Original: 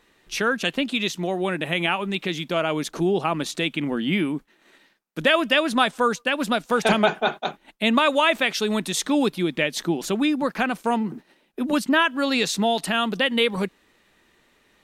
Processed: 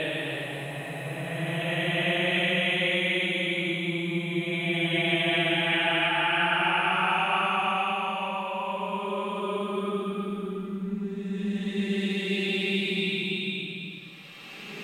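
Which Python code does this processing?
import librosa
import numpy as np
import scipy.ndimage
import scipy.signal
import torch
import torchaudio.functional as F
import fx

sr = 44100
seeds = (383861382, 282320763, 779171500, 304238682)

y = fx.paulstretch(x, sr, seeds[0], factor=25.0, window_s=0.1, from_s=1.64)
y = y * librosa.db_to_amplitude(-3.0)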